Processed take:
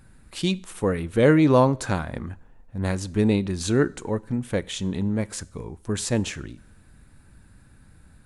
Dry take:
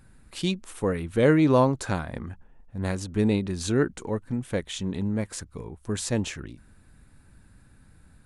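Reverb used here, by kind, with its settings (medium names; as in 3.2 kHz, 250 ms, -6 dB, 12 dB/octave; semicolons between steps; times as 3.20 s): two-slope reverb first 0.53 s, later 1.9 s, from -18 dB, DRR 19 dB; trim +2.5 dB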